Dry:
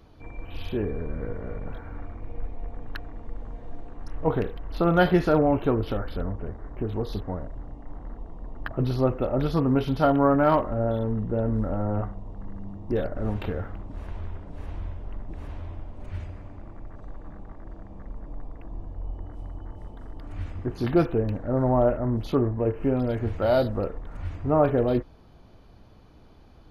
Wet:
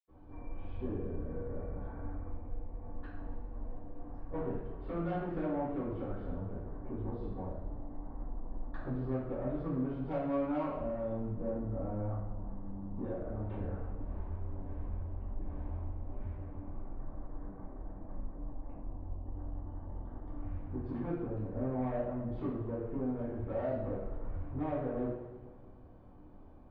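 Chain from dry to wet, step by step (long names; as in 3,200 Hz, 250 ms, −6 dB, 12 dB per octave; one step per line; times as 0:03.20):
downward compressor 2.5 to 1, threshold −32 dBFS, peak gain reduction 11.5 dB
low-pass filter 1,100 Hz 12 dB per octave
soft clipping −25.5 dBFS, distortion −18 dB
convolution reverb, pre-delay 77 ms, DRR −60 dB
level +15 dB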